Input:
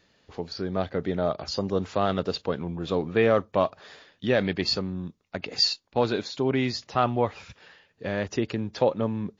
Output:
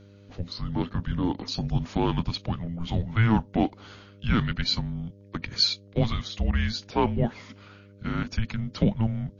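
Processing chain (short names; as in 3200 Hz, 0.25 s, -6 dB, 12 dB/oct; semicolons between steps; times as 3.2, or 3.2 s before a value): frequency shift -340 Hz; buzz 100 Hz, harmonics 6, -51 dBFS -5 dB/oct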